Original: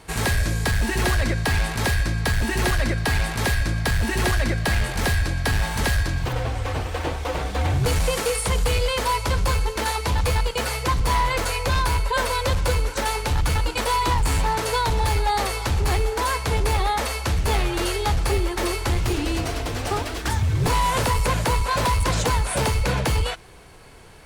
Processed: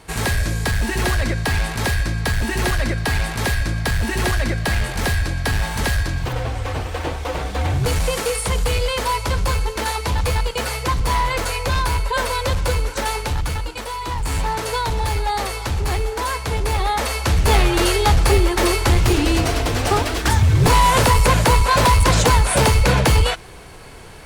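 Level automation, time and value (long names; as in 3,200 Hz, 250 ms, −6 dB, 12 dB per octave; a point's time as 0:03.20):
0:13.19 +1.5 dB
0:13.96 −7 dB
0:14.38 0 dB
0:16.60 0 dB
0:17.57 +7 dB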